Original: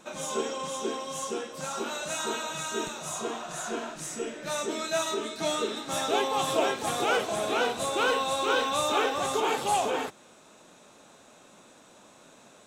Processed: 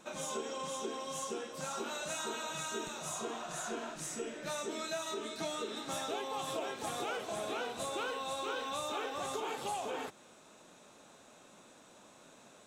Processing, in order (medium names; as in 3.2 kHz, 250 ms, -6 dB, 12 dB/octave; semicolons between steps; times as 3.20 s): compression, threshold -31 dBFS, peak gain reduction 10.5 dB; trim -4 dB